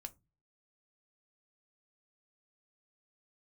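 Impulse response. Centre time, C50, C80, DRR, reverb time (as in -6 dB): 3 ms, 23.5 dB, 32.0 dB, 8.5 dB, 0.25 s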